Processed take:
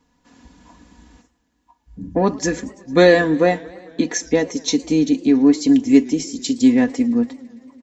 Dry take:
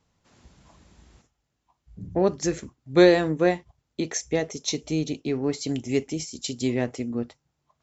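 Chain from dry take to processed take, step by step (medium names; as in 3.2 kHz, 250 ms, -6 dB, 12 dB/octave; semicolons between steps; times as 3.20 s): comb 4.1 ms, depth 59%; small resonant body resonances 280/940/1700 Hz, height 10 dB, ringing for 45 ms; modulated delay 112 ms, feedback 75%, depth 177 cents, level -23 dB; trim +3.5 dB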